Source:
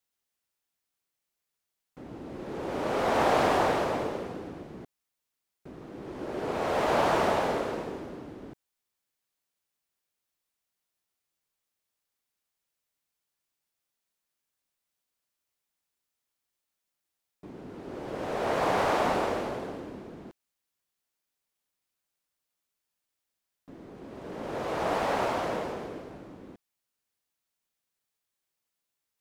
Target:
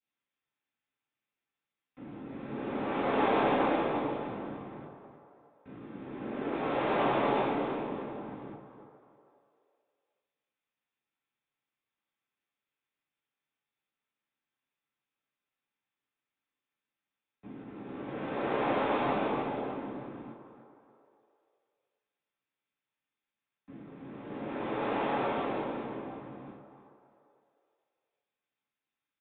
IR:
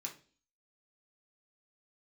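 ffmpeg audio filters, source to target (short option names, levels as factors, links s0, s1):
-filter_complex "[0:a]adynamicequalizer=threshold=0.00562:dfrequency=1700:dqfactor=1.4:tfrequency=1700:tqfactor=1.4:attack=5:release=100:ratio=0.375:range=2.5:mode=cutabove:tftype=bell,asplit=2[s0][s1];[s1]asetrate=29433,aresample=44100,atempo=1.49831,volume=0.631[s2];[s0][s2]amix=inputs=2:normalize=0,aecho=1:1:309|618|927:0.251|0.0653|0.017,acrossover=split=210|1600|2100[s3][s4][s5][s6];[s3]aeval=exprs='clip(val(0),-1,0.00376)':c=same[s7];[s4]asplit=5[s8][s9][s10][s11][s12];[s9]adelay=414,afreqshift=51,volume=0.237[s13];[s10]adelay=828,afreqshift=102,volume=0.0944[s14];[s11]adelay=1242,afreqshift=153,volume=0.038[s15];[s12]adelay=1656,afreqshift=204,volume=0.0151[s16];[s8][s13][s14][s15][s16]amix=inputs=5:normalize=0[s17];[s7][s17][s5][s6]amix=inputs=4:normalize=0[s18];[1:a]atrim=start_sample=2205[s19];[s18][s19]afir=irnorm=-1:irlink=0,aresample=8000,aresample=44100"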